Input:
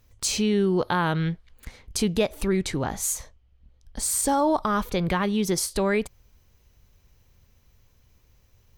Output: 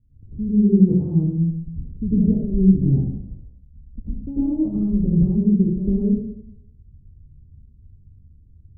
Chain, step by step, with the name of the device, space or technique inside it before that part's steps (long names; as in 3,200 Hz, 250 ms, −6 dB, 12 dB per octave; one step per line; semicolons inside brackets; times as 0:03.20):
next room (low-pass filter 260 Hz 24 dB per octave; convolution reverb RT60 0.80 s, pre-delay 89 ms, DRR −11.5 dB)